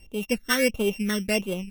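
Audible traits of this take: a buzz of ramps at a fixed pitch in blocks of 16 samples; phasing stages 12, 1.5 Hz, lowest notch 800–1800 Hz; Vorbis

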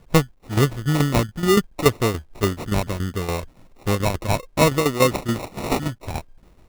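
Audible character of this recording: aliases and images of a low sample rate 1.6 kHz, jitter 0%; tremolo saw down 7 Hz, depth 70%; a quantiser's noise floor 12-bit, dither none

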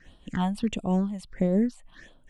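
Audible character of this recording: phasing stages 6, 1.5 Hz, lowest notch 380–1800 Hz; random flutter of the level

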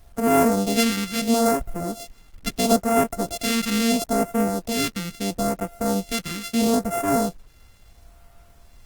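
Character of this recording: a buzz of ramps at a fixed pitch in blocks of 64 samples; phasing stages 2, 0.75 Hz, lowest notch 640–3800 Hz; a quantiser's noise floor 10-bit, dither none; Opus

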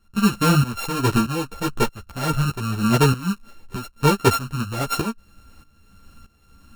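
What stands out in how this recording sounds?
a buzz of ramps at a fixed pitch in blocks of 32 samples; tremolo saw up 1.6 Hz, depth 85%; a shimmering, thickened sound

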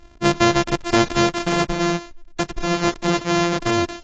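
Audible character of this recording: a buzz of ramps at a fixed pitch in blocks of 128 samples; AAC

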